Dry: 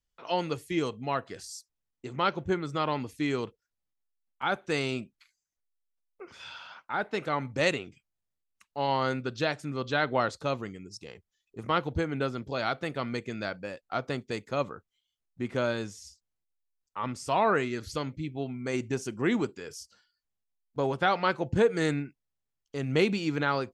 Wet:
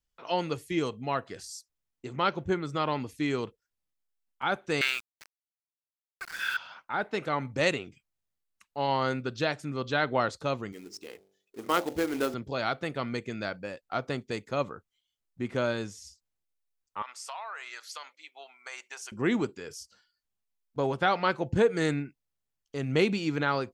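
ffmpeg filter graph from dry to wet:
ffmpeg -i in.wav -filter_complex "[0:a]asettb=1/sr,asplit=3[link_01][link_02][link_03];[link_01]atrim=end=4.814[link_04];[link_02]atrim=start=4.81:end=6.57,asetpts=PTS-STARTPTS,afade=type=in:duration=0.004:curve=qsin,afade=type=out:start_time=1.756:duration=0.004:curve=qsin,acontrast=26,highpass=frequency=1600:width_type=q:width=8.5,aeval=exprs='val(0)*gte(abs(val(0)),0.0112)':channel_layout=same[link_05];[link_03]atrim=start=6.566[link_06];[link_04][link_05]acrossfade=duration=0.004:curve1=hsin:curve2=qsin[link_07];[link_07][link_06]acrossfade=duration=0.004:curve1=qsin:curve2=hsin,asettb=1/sr,asplit=3[link_08][link_09][link_10];[link_08]atrim=end=10.724[link_11];[link_09]atrim=start=10.72:end=12.34,asetpts=PTS-STARTPTS,afade=type=in:duration=0.004:curve=qsin,afade=type=out:start_time=1.616:duration=0.004:curve=qsin,lowshelf=frequency=190:width_type=q:width=1.5:gain=-13,bandreject=frequency=48.36:width_type=h:width=4,bandreject=frequency=96.72:width_type=h:width=4,bandreject=frequency=145.08:width_type=h:width=4,bandreject=frequency=193.44:width_type=h:width=4,bandreject=frequency=241.8:width_type=h:width=4,bandreject=frequency=290.16:width_type=h:width=4,bandreject=frequency=338.52:width_type=h:width=4,bandreject=frequency=386.88:width_type=h:width=4,bandreject=frequency=435.24:width_type=h:width=4,bandreject=frequency=483.6:width_type=h:width=4,bandreject=frequency=531.96:width_type=h:width=4,bandreject=frequency=580.32:width_type=h:width=4,bandreject=frequency=628.68:width_type=h:width=4,bandreject=frequency=677.04:width_type=h:width=4,bandreject=frequency=725.4:width_type=h:width=4,bandreject=frequency=773.76:width_type=h:width=4,bandreject=frequency=822.12:width_type=h:width=4,bandreject=frequency=870.48:width_type=h:width=4,acrusher=bits=3:mode=log:mix=0:aa=0.000001[link_12];[link_10]atrim=start=12.336[link_13];[link_11][link_12]acrossfade=duration=0.004:curve1=hsin:curve2=qsin[link_14];[link_14][link_13]acrossfade=duration=0.004:curve1=qsin:curve2=hsin,asettb=1/sr,asplit=3[link_15][link_16][link_17];[link_15]atrim=end=17.024[link_18];[link_16]atrim=start=17.02:end=19.12,asetpts=PTS-STARTPTS,afade=type=in:duration=0.004:curve=qsin,afade=type=out:start_time=2.096:duration=0.004:curve=qsin,highpass=frequency=790:width=0.5412,highpass=frequency=790:width=1.3066,acompressor=threshold=-35dB:ratio=12:attack=3.2:release=140:knee=1:detection=peak[link_19];[link_17]atrim=start=19.116[link_20];[link_18][link_19]acrossfade=duration=0.004:curve1=hsin:curve2=qsin[link_21];[link_21][link_20]acrossfade=duration=0.004:curve1=qsin:curve2=hsin" out.wav

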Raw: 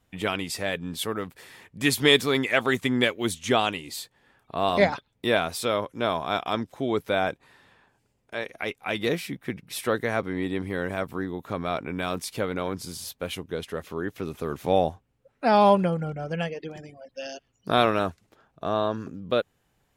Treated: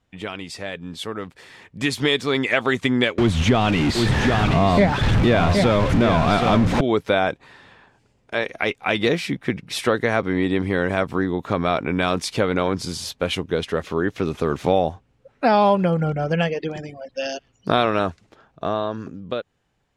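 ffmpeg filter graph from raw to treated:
ffmpeg -i in.wav -filter_complex "[0:a]asettb=1/sr,asplit=3[link_01][link_02][link_03];[link_01]atrim=end=3.184[link_04];[link_02]atrim=start=3.18:end=6.81,asetpts=PTS-STARTPTS,afade=type=in:duration=0.004:curve=qsin,afade=type=out:start_time=3.626:duration=0.004:curve=qsin,aeval=exprs='val(0)+0.5*0.0708*sgn(val(0))':channel_layout=same,bass=frequency=250:gain=11,treble=frequency=4000:gain=-9,aecho=1:1:770:0.422,atrim=end_sample=160083[link_05];[link_03]atrim=start=6.806[link_06];[link_04][link_05]acrossfade=duration=0.004:curve1=hsin:curve2=qsin[link_07];[link_07][link_06]acrossfade=duration=0.004:curve1=qsin:curve2=hsin,acompressor=threshold=-25dB:ratio=3,lowpass=6700,dynaudnorm=framelen=320:gausssize=11:maxgain=11.5dB,volume=-1dB" out.wav

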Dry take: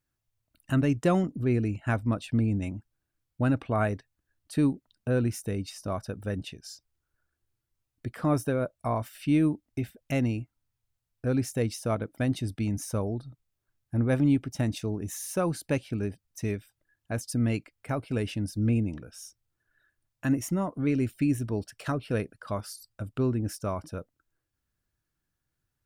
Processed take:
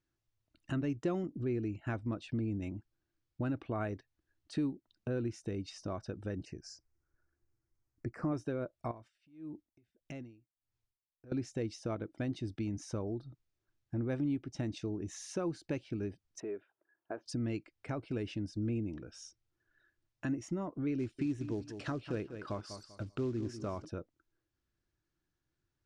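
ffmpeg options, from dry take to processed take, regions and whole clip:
ffmpeg -i in.wav -filter_complex "[0:a]asettb=1/sr,asplit=3[link_01][link_02][link_03];[link_01]atrim=end=6.454[link_04];[link_02]atrim=start=6.45:end=8.32,asetpts=PTS-STARTPTS,afade=type=in:duration=0.004:curve=qsin,afade=type=out:start_time=1.866:duration=0.004:curve=qsin,asuperstop=centerf=3400:order=4:qfactor=1.2,lowshelf=frequency=150:gain=4.5[link_05];[link_03]atrim=start=8.316[link_06];[link_04][link_05]acrossfade=duration=0.004:curve1=hsin:curve2=qsin[link_07];[link_07][link_06]acrossfade=duration=0.004:curve1=qsin:curve2=hsin,asettb=1/sr,asplit=3[link_08][link_09][link_10];[link_08]atrim=end=8.914[link_11];[link_09]atrim=start=8.91:end=11.32,asetpts=PTS-STARTPTS,afade=type=in:duration=0.004:curve=qsin,afade=type=out:start_time=2.406:duration=0.004:curve=qsin,acompressor=threshold=-37dB:ratio=20:attack=3.2:release=140:knee=1:detection=peak,aeval=exprs='val(0)*pow(10,-28*(0.5-0.5*cos(2*PI*1.6*n/s))/20)':channel_layout=same[link_12];[link_10]atrim=start=11.316[link_13];[link_11][link_12]acrossfade=duration=0.004:curve1=hsin:curve2=qsin[link_14];[link_14][link_13]acrossfade=duration=0.004:curve1=qsin:curve2=hsin,asettb=1/sr,asplit=3[link_15][link_16][link_17];[link_15]atrim=end=16.404[link_18];[link_16]atrim=start=16.4:end=17.26,asetpts=PTS-STARTPTS,afade=type=in:duration=0.004:curve=qsin,afade=type=out:start_time=0.856:duration=0.004:curve=qsin,acompressor=threshold=-32dB:ratio=3:attack=3.2:release=140:knee=1:detection=peak,highpass=360,equalizer=frequency=400:width_type=q:width=4:gain=7,equalizer=frequency=660:width_type=q:width=4:gain=6,equalizer=frequency=940:width_type=q:width=4:gain=6,equalizer=frequency=1400:width_type=q:width=4:gain=4,equalizer=frequency=2100:width_type=q:width=4:gain=-7,lowpass=frequency=2300:width=0.5412,lowpass=frequency=2300:width=1.3066[link_19];[link_17]atrim=start=17.256[link_20];[link_18][link_19]acrossfade=duration=0.004:curve1=hsin:curve2=qsin[link_21];[link_21][link_20]acrossfade=duration=0.004:curve1=qsin:curve2=hsin,asettb=1/sr,asplit=3[link_22][link_23][link_24];[link_22]atrim=end=20.994[link_25];[link_23]atrim=start=20.99:end=23.85,asetpts=PTS-STARTPTS,afade=type=in:duration=0.004:curve=qsin,afade=type=out:start_time=2.856:duration=0.004:curve=qsin,aecho=1:1:195|390|585:0.211|0.055|0.0143,atrim=end_sample=126126,acrusher=bits=6:mode=log:mix=0:aa=0.000001[link_26];[link_24]atrim=start=23.846[link_27];[link_25][link_26]acrossfade=duration=0.004:curve1=hsin:curve2=qsin[link_28];[link_28][link_27]acrossfade=duration=0.004:curve1=qsin:curve2=hsin,lowpass=frequency=6700:width=0.5412,lowpass=frequency=6700:width=1.3066,equalizer=frequency=340:width_type=o:width=0.39:gain=9,acompressor=threshold=-36dB:ratio=2,volume=-3dB" out.wav

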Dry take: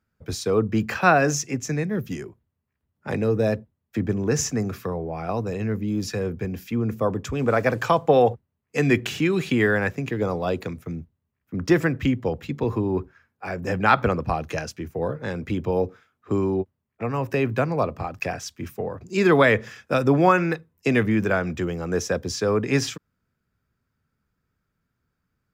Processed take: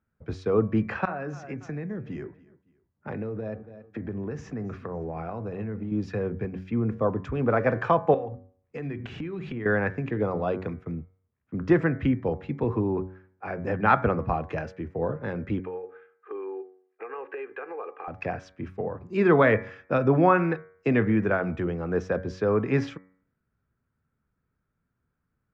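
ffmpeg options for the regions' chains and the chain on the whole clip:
ffmpeg -i in.wav -filter_complex "[0:a]asettb=1/sr,asplit=3[link_01][link_02][link_03];[link_01]atrim=end=1.054[link_04];[link_02]atrim=start=1.05:end=5.92,asetpts=PTS-STARTPTS,afade=type=in:duration=0.004:curve=qsin,afade=type=out:start_time=4.866:duration=0.004:curve=qsin,highshelf=frequency=8400:gain=-5,aecho=1:1:279|558:0.0708|0.0227,atrim=end_sample=214767,acompressor=threshold=-27dB:ratio=12:attack=3.2:release=140:knee=1:detection=peak[link_05];[link_03]atrim=start=5.916[link_06];[link_04][link_05]acrossfade=duration=0.004:curve1=hsin:curve2=qsin[link_07];[link_07][link_06]acrossfade=duration=0.004:curve1=qsin:curve2=hsin,asettb=1/sr,asplit=3[link_08][link_09][link_10];[link_08]atrim=end=8.144[link_11];[link_09]atrim=start=8.14:end=9.66,asetpts=PTS-STARTPTS,afade=type=in:duration=0.004:curve=qsin,afade=type=out:start_time=1.516:duration=0.004:curve=qsin,bandreject=frequency=50:width_type=h:width=6,bandreject=frequency=100:width_type=h:width=6,bandreject=frequency=150:width_type=h:width=6,bandreject=frequency=200:width_type=h:width=6,bandreject=frequency=250:width_type=h:width=6,acompressor=threshold=-30dB:ratio=10:attack=3.2:release=140:knee=1:detection=peak,lowshelf=frequency=130:gain=9.5[link_12];[link_10]atrim=start=9.656[link_13];[link_11][link_12]acrossfade=duration=0.004:curve1=hsin:curve2=qsin[link_14];[link_14][link_13]acrossfade=duration=0.004:curve1=qsin:curve2=hsin,asettb=1/sr,asplit=3[link_15][link_16][link_17];[link_15]atrim=end=15.594[link_18];[link_16]atrim=start=15.59:end=18.08,asetpts=PTS-STARTPTS,afade=type=in:duration=0.004:curve=qsin,afade=type=out:start_time=2.486:duration=0.004:curve=qsin,highpass=frequency=420:width=0.5412,highpass=frequency=420:width=1.3066,equalizer=frequency=440:width_type=q:width=4:gain=4,equalizer=frequency=650:width_type=q:width=4:gain=-9,equalizer=frequency=1600:width_type=q:width=4:gain=5,equalizer=frequency=2600:width_type=q:width=4:gain=4,lowpass=frequency=3100:width=0.5412,lowpass=frequency=3100:width=1.3066,aecho=1:1:2.5:0.52,atrim=end_sample=109809,acompressor=threshold=-31dB:ratio=5:attack=3.2:release=140:knee=1:detection=peak[link_19];[link_17]atrim=start=18.076[link_20];[link_18][link_19]acrossfade=duration=0.004:curve1=hsin:curve2=qsin[link_21];[link_21][link_20]acrossfade=duration=0.004:curve1=qsin:curve2=hsin,lowpass=1900,bandreject=frequency=93.38:width_type=h:width=4,bandreject=frequency=186.76:width_type=h:width=4,bandreject=frequency=280.14:width_type=h:width=4,bandreject=frequency=373.52:width_type=h:width=4,bandreject=frequency=466.9:width_type=h:width=4,bandreject=frequency=560.28:width_type=h:width=4,bandreject=frequency=653.66:width_type=h:width=4,bandreject=frequency=747.04:width_type=h:width=4,bandreject=frequency=840.42:width_type=h:width=4,bandreject=frequency=933.8:width_type=h:width=4,bandreject=frequency=1027.18:width_type=h:width=4,bandreject=frequency=1120.56:width_type=h:width=4,bandreject=frequency=1213.94:width_type=h:width=4,bandreject=frequency=1307.32:width_type=h:width=4,bandreject=frequency=1400.7:width_type=h:width=4,bandreject=frequency=1494.08:width_type=h:width=4,bandreject=frequency=1587.46:width_type=h:width=4,bandreject=frequency=1680.84:width_type=h:width=4,bandreject=frequency=1774.22:width_type=h:width=4,bandreject=frequency=1867.6:width_type=h:width=4,bandreject=frequency=1960.98:width_type=h:width=4,bandreject=frequency=2054.36:width_type=h:width=4,bandreject=frequency=2147.74:width_type=h:width=4,bandreject=frequency=2241.12:width_type=h:width=4,bandreject=frequency=2334.5:width_type=h:width=4,volume=-1.5dB" out.wav

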